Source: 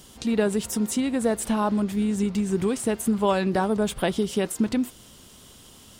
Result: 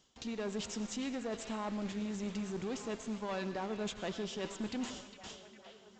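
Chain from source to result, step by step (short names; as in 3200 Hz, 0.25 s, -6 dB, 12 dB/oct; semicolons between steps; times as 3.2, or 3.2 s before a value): gate with hold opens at -37 dBFS; low shelf 290 Hz -7.5 dB; reverse; compressor 10:1, threshold -38 dBFS, peak gain reduction 19 dB; reverse; short-mantissa float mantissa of 2-bit; tube stage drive 37 dB, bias 0.35; delay with a stepping band-pass 0.406 s, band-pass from 3000 Hz, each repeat -0.7 oct, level -7 dB; on a send at -12 dB: reverb RT60 0.85 s, pre-delay 77 ms; on the sum: downsampling 16000 Hz; gain +5.5 dB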